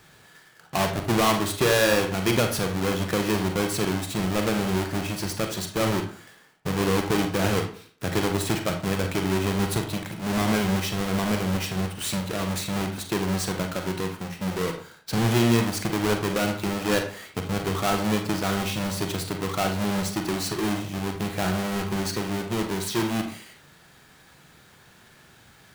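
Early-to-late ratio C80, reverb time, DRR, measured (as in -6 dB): 12.0 dB, 0.50 s, 4.5 dB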